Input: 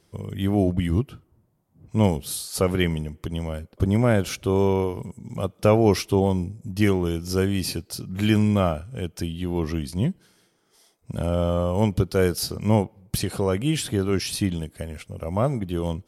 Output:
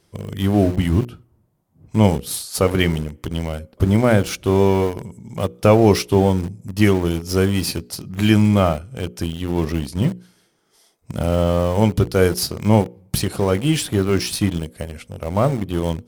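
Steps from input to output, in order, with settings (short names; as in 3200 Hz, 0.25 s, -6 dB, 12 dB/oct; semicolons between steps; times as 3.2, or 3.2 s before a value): notches 60/120/180/240/300/360/420/480/540 Hz; in parallel at -6 dB: sample gate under -26 dBFS; on the sum: gain +2 dB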